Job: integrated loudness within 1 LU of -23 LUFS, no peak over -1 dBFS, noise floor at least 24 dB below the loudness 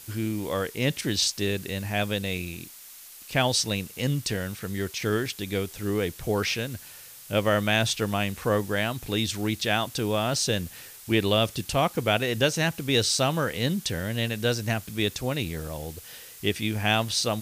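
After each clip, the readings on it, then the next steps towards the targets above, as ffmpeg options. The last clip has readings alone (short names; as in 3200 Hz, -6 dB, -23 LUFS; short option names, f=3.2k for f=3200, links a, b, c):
noise floor -46 dBFS; noise floor target -51 dBFS; loudness -26.5 LUFS; peak -8.5 dBFS; loudness target -23.0 LUFS
-> -af "afftdn=nr=6:nf=-46"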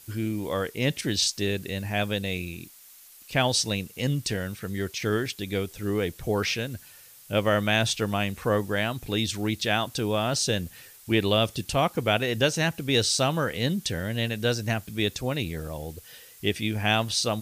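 noise floor -51 dBFS; loudness -26.5 LUFS; peak -8.5 dBFS; loudness target -23.0 LUFS
-> -af "volume=3.5dB"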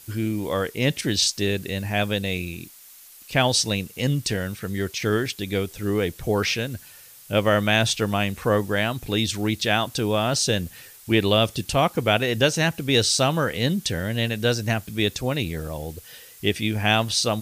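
loudness -23.0 LUFS; peak -5.0 dBFS; noise floor -47 dBFS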